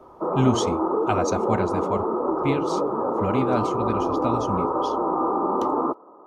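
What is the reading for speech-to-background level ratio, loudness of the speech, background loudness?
-3.5 dB, -28.0 LUFS, -24.5 LUFS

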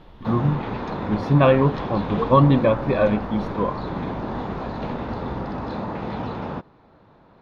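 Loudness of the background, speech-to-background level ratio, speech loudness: -29.5 LUFS, 9.0 dB, -20.5 LUFS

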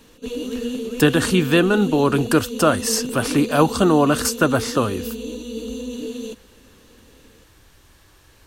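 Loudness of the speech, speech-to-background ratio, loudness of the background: -18.5 LUFS, 10.5 dB, -29.0 LUFS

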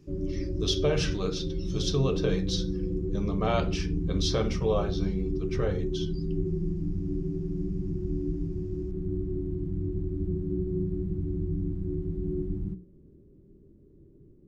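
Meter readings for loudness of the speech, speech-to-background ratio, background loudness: -31.5 LUFS, 0.5 dB, -32.0 LUFS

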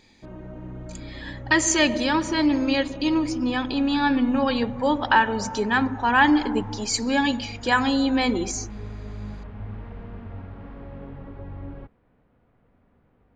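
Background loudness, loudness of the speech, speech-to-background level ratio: -39.5 LUFS, -22.0 LUFS, 17.5 dB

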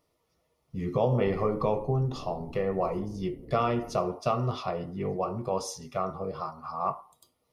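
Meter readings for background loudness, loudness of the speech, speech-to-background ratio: -48.0 LUFS, -30.5 LUFS, 17.5 dB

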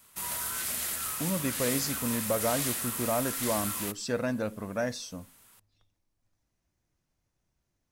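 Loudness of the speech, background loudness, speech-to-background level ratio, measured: -32.5 LUFS, -31.5 LUFS, -1.0 dB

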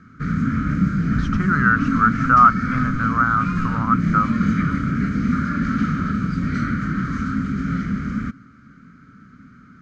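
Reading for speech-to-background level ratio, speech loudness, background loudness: 3.0 dB, -19.0 LUFS, -22.0 LUFS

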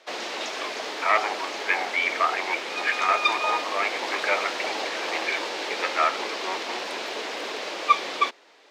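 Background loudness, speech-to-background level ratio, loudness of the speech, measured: -28.5 LUFS, 1.5 dB, -27.0 LUFS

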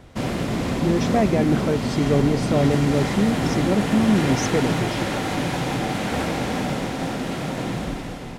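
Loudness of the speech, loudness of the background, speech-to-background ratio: -22.5 LUFS, -24.5 LUFS, 2.0 dB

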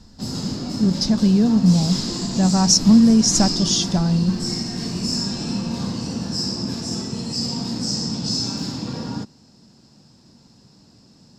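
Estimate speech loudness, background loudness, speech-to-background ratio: -17.0 LUFS, -25.0 LUFS, 8.0 dB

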